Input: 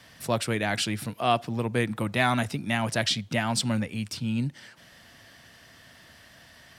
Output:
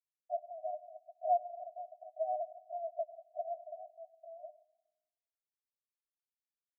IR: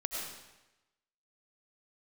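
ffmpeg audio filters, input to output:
-filter_complex "[0:a]aeval=exprs='val(0)*gte(abs(val(0)),0.0562)':c=same,asuperpass=centerf=670:order=20:qfactor=4.8,asplit=2[a][b];[1:a]atrim=start_sample=2205[c];[b][c]afir=irnorm=-1:irlink=0,volume=-19dB[d];[a][d]amix=inputs=2:normalize=0,volume=-4dB"

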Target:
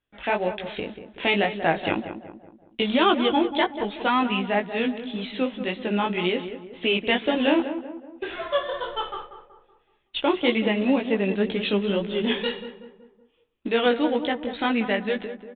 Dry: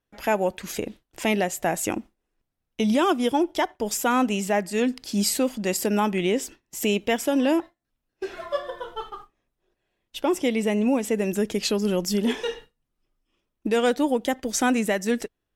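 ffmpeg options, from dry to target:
-filter_complex "[0:a]highshelf=f=2.3k:g=11,dynaudnorm=f=250:g=11:m=6dB,aresample=8000,acrusher=bits=6:mode=log:mix=0:aa=0.000001,aresample=44100,flanger=delay=16.5:depth=4.4:speed=1.9,asplit=2[a][b];[b]adelay=188,lowpass=f=1.4k:p=1,volume=-9.5dB,asplit=2[c][d];[d]adelay=188,lowpass=f=1.4k:p=1,volume=0.48,asplit=2[e][f];[f]adelay=188,lowpass=f=1.4k:p=1,volume=0.48,asplit=2[g][h];[h]adelay=188,lowpass=f=1.4k:p=1,volume=0.48,asplit=2[i][j];[j]adelay=188,lowpass=f=1.4k:p=1,volume=0.48[k];[a][c][e][g][i][k]amix=inputs=6:normalize=0"

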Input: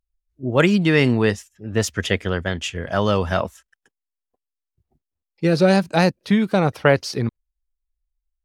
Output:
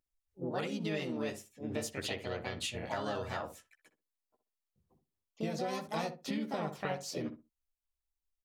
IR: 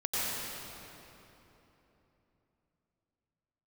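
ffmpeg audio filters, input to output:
-filter_complex "[0:a]highshelf=f=6.9k:g=2,asplit=2[a][b];[b]adelay=13,volume=-5dB[c];[a][c]amix=inputs=2:normalize=0,acompressor=threshold=-29dB:ratio=8,lowshelf=f=93:g=-11.5,bandreject=f=1.6k:w=11,asplit=2[d][e];[e]asetrate=58866,aresample=44100,atempo=0.749154,volume=-2dB[f];[d][f]amix=inputs=2:normalize=0,asplit=2[g][h];[h]adelay=63,lowpass=f=1k:p=1,volume=-8.5dB,asplit=2[i][j];[j]adelay=63,lowpass=f=1k:p=1,volume=0.21,asplit=2[k][l];[l]adelay=63,lowpass=f=1k:p=1,volume=0.21[m];[g][i][k][m]amix=inputs=4:normalize=0,volume=-6dB"

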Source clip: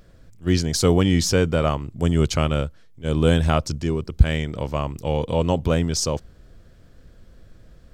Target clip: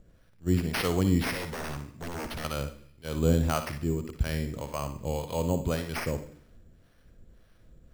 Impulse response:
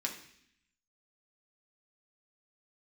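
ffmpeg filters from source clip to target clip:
-filter_complex "[0:a]acrossover=split=590[a][b];[a]aeval=exprs='val(0)*(1-0.7/2+0.7/2*cos(2*PI*1.8*n/s))':c=same[c];[b]aeval=exprs='val(0)*(1-0.7/2-0.7/2*cos(2*PI*1.8*n/s))':c=same[d];[c][d]amix=inputs=2:normalize=0,asettb=1/sr,asplit=3[e][f][g];[e]atrim=end=1.324[h];[f]atrim=start=1.32:end=2.45,asetpts=PTS-STARTPTS,afade=t=in:d=0.004:c=qsin,afade=t=out:st=1.126:d=0.004:c=qsin,aeval=exprs='0.0531*(abs(mod(val(0)/0.0531+3,4)-2)-1)':c=same[i];[g]atrim=start=2.446[j];[h][i]acrossfade=d=0.004:c1=hsin:c2=qsin[k];[k][j]acrossfade=d=0.004:c1=qsin:c2=hsin,asplit=2[l][m];[1:a]atrim=start_sample=2205,adelay=57[n];[m][n]afir=irnorm=-1:irlink=0,volume=-10dB[o];[l][o]amix=inputs=2:normalize=0,acrusher=samples=6:mix=1:aa=0.000001,volume=-5dB"

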